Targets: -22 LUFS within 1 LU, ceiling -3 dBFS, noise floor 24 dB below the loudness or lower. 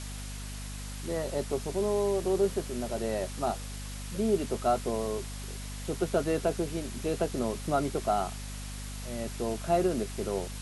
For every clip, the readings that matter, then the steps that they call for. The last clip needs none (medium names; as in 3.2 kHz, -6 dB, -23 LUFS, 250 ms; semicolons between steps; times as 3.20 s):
hum 50 Hz; highest harmonic 250 Hz; hum level -37 dBFS; noise floor -39 dBFS; noise floor target -56 dBFS; loudness -32.0 LUFS; peak level -15.0 dBFS; loudness target -22.0 LUFS
-> hum notches 50/100/150/200/250 Hz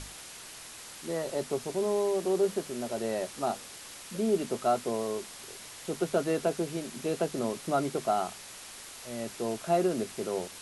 hum not found; noise floor -46 dBFS; noise floor target -56 dBFS
-> noise reduction 10 dB, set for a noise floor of -46 dBFS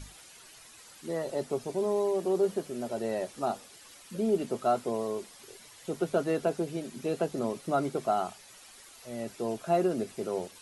noise floor -53 dBFS; noise floor target -56 dBFS
-> noise reduction 6 dB, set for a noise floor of -53 dBFS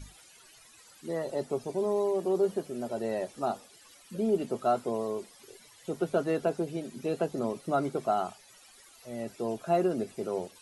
noise floor -57 dBFS; loudness -31.5 LUFS; peak level -15.5 dBFS; loudness target -22.0 LUFS
-> trim +9.5 dB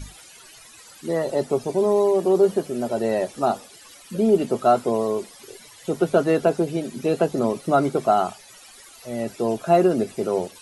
loudness -22.0 LUFS; peak level -6.0 dBFS; noise floor -47 dBFS